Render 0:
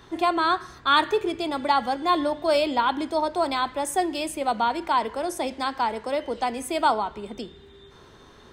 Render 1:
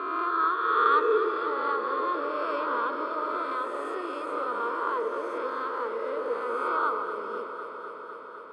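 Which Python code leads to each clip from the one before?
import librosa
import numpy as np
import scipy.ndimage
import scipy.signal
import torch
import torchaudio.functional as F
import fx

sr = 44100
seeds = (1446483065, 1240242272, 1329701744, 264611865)

y = fx.spec_swells(x, sr, rise_s=2.02)
y = fx.double_bandpass(y, sr, hz=760.0, octaves=1.4)
y = fx.echo_alternate(y, sr, ms=126, hz=870.0, feedback_pct=90, wet_db=-8.5)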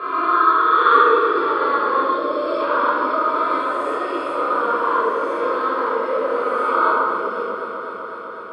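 y = fx.spec_box(x, sr, start_s=2.04, length_s=0.55, low_hz=670.0, high_hz=3100.0, gain_db=-7)
y = fx.room_shoebox(y, sr, seeds[0], volume_m3=820.0, walls='mixed', distance_m=5.7)
y = y * librosa.db_to_amplitude(-1.0)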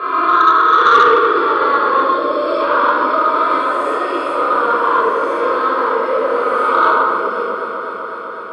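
y = fx.low_shelf(x, sr, hz=360.0, db=-3.5)
y = 10.0 ** (-8.0 / 20.0) * np.tanh(y / 10.0 ** (-8.0 / 20.0))
y = y * librosa.db_to_amplitude(6.0)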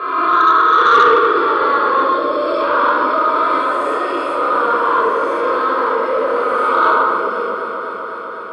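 y = fx.transient(x, sr, attack_db=-5, sustain_db=0)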